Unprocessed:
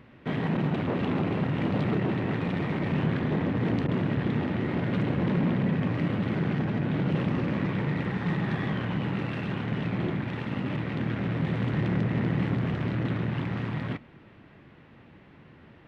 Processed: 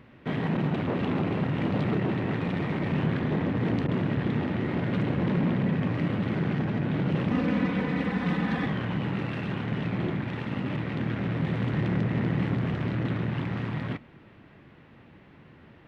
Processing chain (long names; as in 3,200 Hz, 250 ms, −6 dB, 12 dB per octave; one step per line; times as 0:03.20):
0:07.31–0:08.66: comb filter 4 ms, depth 94%